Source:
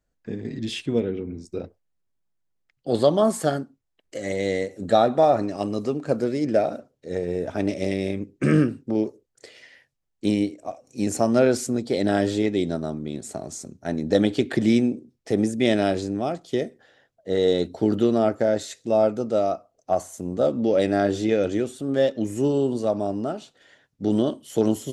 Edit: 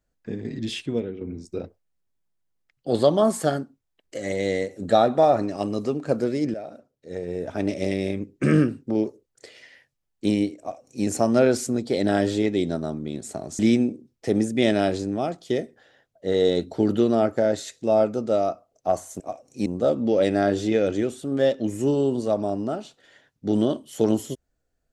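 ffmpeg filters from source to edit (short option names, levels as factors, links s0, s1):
-filter_complex "[0:a]asplit=6[s0][s1][s2][s3][s4][s5];[s0]atrim=end=1.21,asetpts=PTS-STARTPTS,afade=t=out:st=0.7:d=0.51:silence=0.398107[s6];[s1]atrim=start=1.21:end=6.54,asetpts=PTS-STARTPTS,afade=t=in:d=0.004:c=hsin:silence=0.398107,afade=t=out:st=5.326:d=0.004:c=hsin:silence=0.149624[s7];[s2]atrim=start=6.54:end=13.592,asetpts=PTS-STARTPTS,afade=t=in:d=1.25:silence=0.149624[s8];[s3]atrim=start=14.618:end=20.232[s9];[s4]atrim=start=10.588:end=11.052[s10];[s5]atrim=start=20.228[s11];[s6][s7][s8]concat=n=3:v=0:a=1[s12];[s12][s9]acrossfade=d=0.004:c1=hsin:c2=hsin[s13];[s13][s10]acrossfade=d=0.004:c1=hsin:c2=hsin[s14];[s14][s11]acrossfade=d=0.004:c1=hsin:c2=hsin"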